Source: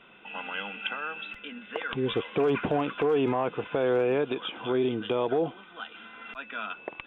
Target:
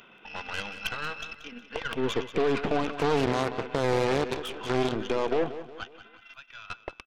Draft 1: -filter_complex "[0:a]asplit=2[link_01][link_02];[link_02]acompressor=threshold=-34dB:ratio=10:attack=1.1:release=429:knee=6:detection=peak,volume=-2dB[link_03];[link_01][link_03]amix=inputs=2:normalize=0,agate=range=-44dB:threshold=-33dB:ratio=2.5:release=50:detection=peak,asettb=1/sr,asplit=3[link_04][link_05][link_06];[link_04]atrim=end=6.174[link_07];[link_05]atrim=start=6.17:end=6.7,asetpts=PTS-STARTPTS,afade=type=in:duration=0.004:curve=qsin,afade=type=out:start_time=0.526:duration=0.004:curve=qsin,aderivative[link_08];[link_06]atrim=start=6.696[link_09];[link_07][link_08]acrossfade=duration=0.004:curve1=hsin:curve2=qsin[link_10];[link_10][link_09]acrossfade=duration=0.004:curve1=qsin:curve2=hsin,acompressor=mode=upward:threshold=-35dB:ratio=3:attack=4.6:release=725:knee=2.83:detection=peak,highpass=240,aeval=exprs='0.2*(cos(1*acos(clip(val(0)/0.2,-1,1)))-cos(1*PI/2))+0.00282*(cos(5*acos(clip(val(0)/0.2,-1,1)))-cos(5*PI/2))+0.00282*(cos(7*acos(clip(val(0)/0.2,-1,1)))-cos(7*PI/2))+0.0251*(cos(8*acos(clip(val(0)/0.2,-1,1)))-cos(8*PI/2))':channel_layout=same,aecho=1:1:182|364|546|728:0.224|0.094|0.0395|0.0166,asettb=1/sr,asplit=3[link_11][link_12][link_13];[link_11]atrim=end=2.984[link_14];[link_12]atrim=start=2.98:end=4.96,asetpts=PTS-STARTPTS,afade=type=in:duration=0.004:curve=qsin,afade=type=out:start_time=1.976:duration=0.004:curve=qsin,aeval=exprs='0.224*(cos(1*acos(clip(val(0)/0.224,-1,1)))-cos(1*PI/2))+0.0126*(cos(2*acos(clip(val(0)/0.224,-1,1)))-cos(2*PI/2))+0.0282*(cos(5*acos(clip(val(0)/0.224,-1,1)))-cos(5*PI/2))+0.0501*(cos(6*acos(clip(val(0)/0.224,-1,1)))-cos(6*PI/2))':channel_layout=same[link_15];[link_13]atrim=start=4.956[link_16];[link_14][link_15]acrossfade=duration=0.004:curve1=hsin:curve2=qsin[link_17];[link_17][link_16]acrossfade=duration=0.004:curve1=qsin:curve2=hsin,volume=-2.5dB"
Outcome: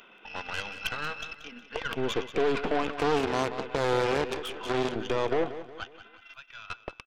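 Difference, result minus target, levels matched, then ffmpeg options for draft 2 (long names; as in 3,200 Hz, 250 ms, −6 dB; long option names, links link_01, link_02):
125 Hz band −3.0 dB
-filter_complex "[0:a]asplit=2[link_01][link_02];[link_02]acompressor=threshold=-34dB:ratio=10:attack=1.1:release=429:knee=6:detection=peak,volume=-2dB[link_03];[link_01][link_03]amix=inputs=2:normalize=0,agate=range=-44dB:threshold=-33dB:ratio=2.5:release=50:detection=peak,asettb=1/sr,asplit=3[link_04][link_05][link_06];[link_04]atrim=end=6.174[link_07];[link_05]atrim=start=6.17:end=6.7,asetpts=PTS-STARTPTS,afade=type=in:duration=0.004:curve=qsin,afade=type=out:start_time=0.526:duration=0.004:curve=qsin,aderivative[link_08];[link_06]atrim=start=6.696[link_09];[link_07][link_08]acrossfade=duration=0.004:curve1=hsin:curve2=qsin[link_10];[link_10][link_09]acrossfade=duration=0.004:curve1=qsin:curve2=hsin,acompressor=mode=upward:threshold=-35dB:ratio=3:attack=4.6:release=725:knee=2.83:detection=peak,highpass=61,aeval=exprs='0.2*(cos(1*acos(clip(val(0)/0.2,-1,1)))-cos(1*PI/2))+0.00282*(cos(5*acos(clip(val(0)/0.2,-1,1)))-cos(5*PI/2))+0.00282*(cos(7*acos(clip(val(0)/0.2,-1,1)))-cos(7*PI/2))+0.0251*(cos(8*acos(clip(val(0)/0.2,-1,1)))-cos(8*PI/2))':channel_layout=same,aecho=1:1:182|364|546|728:0.224|0.094|0.0395|0.0166,asettb=1/sr,asplit=3[link_11][link_12][link_13];[link_11]atrim=end=2.984[link_14];[link_12]atrim=start=2.98:end=4.96,asetpts=PTS-STARTPTS,afade=type=in:duration=0.004:curve=qsin,afade=type=out:start_time=1.976:duration=0.004:curve=qsin,aeval=exprs='0.224*(cos(1*acos(clip(val(0)/0.224,-1,1)))-cos(1*PI/2))+0.0126*(cos(2*acos(clip(val(0)/0.224,-1,1)))-cos(2*PI/2))+0.0282*(cos(5*acos(clip(val(0)/0.224,-1,1)))-cos(5*PI/2))+0.0501*(cos(6*acos(clip(val(0)/0.224,-1,1)))-cos(6*PI/2))':channel_layout=same[link_15];[link_13]atrim=start=4.956[link_16];[link_14][link_15]acrossfade=duration=0.004:curve1=hsin:curve2=qsin[link_17];[link_17][link_16]acrossfade=duration=0.004:curve1=qsin:curve2=hsin,volume=-2.5dB"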